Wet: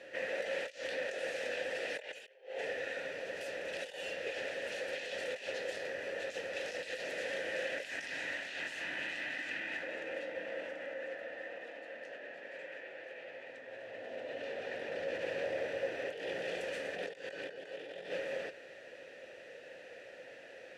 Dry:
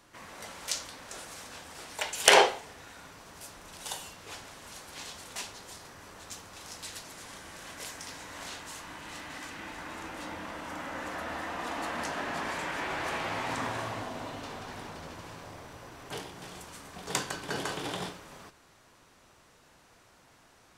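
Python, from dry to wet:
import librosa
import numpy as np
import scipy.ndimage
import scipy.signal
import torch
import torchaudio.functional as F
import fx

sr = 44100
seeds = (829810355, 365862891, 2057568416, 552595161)

y = fx.peak_eq(x, sr, hz=500.0, db=-14.5, octaves=0.55, at=(7.82, 9.83))
y = fx.over_compress(y, sr, threshold_db=-46.0, ratio=-1.0)
y = fx.vowel_filter(y, sr, vowel='e')
y = F.gain(torch.from_numpy(y), 14.5).numpy()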